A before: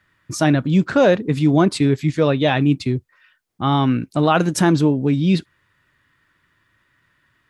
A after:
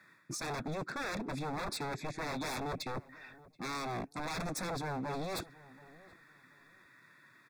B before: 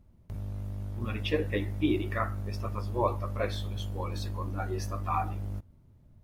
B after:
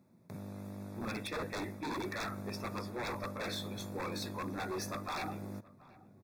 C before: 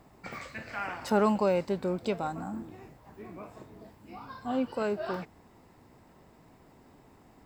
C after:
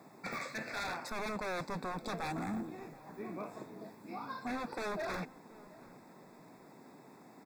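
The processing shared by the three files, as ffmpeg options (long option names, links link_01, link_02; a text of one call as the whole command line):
ffmpeg -i in.wav -filter_complex "[0:a]highpass=frequency=150:width=0.5412,highpass=frequency=150:width=1.3066,areverse,acompressor=threshold=-30dB:ratio=6,areverse,aeval=exprs='0.0188*(abs(mod(val(0)/0.0188+3,4)-2)-1)':channel_layout=same,asuperstop=centerf=3000:order=12:qfactor=4.4,asplit=2[link_01][link_02];[link_02]adelay=728,lowpass=frequency=1300:poles=1,volume=-19.5dB,asplit=2[link_03][link_04];[link_04]adelay=728,lowpass=frequency=1300:poles=1,volume=0.23[link_05];[link_01][link_03][link_05]amix=inputs=3:normalize=0,volume=2dB" out.wav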